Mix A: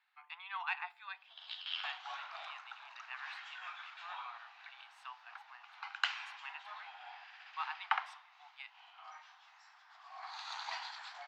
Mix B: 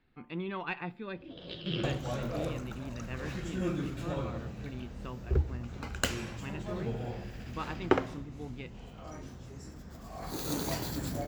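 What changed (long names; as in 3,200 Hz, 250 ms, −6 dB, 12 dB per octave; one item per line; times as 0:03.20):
second sound: remove low-pass filter 4,200 Hz 24 dB per octave
master: remove Butterworth high-pass 780 Hz 72 dB per octave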